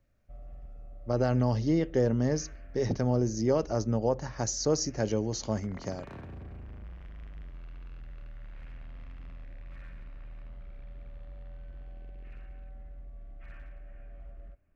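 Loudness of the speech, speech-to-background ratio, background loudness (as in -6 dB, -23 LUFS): -29.5 LUFS, 19.5 dB, -49.0 LUFS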